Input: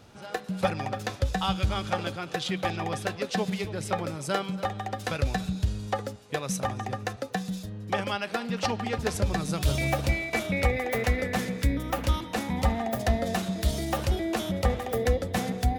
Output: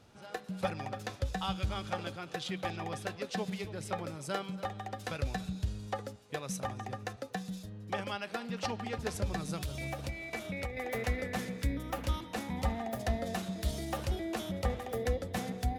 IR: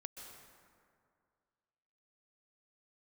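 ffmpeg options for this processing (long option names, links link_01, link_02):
-filter_complex "[0:a]asettb=1/sr,asplit=3[link_01][link_02][link_03];[link_01]atrim=end=9.614[link_04];[link_02]atrim=start=9.61:end=10.77,asetpts=PTS-STARTPTS,afade=type=in:duration=0.004:curve=qsin,afade=type=out:start_time=1.156:duration=0.004:curve=qsin,acompressor=threshold=-27dB:ratio=6[link_05];[link_03]atrim=start=10.766[link_06];[link_04][link_05]acrossfade=duration=0.004:curve1=hsin:curve2=qsin[link_07];[link_07][link_06]acrossfade=duration=0.004:curve1=qsin:curve2=hsin[link_08];[1:a]atrim=start_sample=2205,atrim=end_sample=4410,asetrate=27342,aresample=44100[link_09];[link_08][link_09]afir=irnorm=-1:irlink=0,volume=-4dB"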